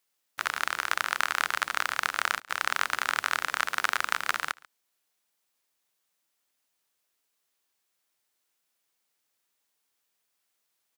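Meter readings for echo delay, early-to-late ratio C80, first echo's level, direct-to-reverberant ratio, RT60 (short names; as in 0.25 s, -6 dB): 0.139 s, none, -23.5 dB, none, none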